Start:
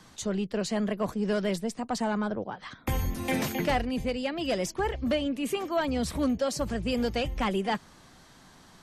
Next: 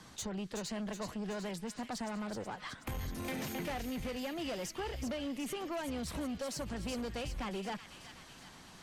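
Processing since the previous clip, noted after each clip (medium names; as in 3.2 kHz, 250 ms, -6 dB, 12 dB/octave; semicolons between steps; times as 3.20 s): compression, threshold -32 dBFS, peak gain reduction 9.5 dB; valve stage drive 34 dB, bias 0.3; feedback echo behind a high-pass 373 ms, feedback 61%, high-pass 1.9 kHz, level -6 dB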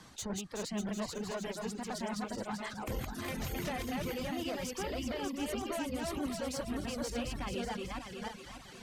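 backward echo that repeats 296 ms, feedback 57%, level -1 dB; reverb removal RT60 0.74 s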